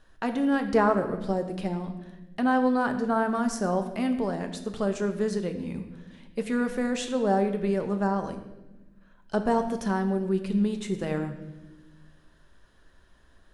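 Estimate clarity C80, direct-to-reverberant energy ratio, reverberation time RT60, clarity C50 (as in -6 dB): 11.0 dB, 6.0 dB, 1.1 s, 9.5 dB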